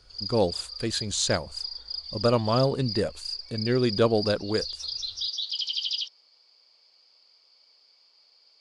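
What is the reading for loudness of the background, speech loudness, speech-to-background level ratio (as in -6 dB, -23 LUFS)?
-32.0 LUFS, -26.5 LUFS, 5.5 dB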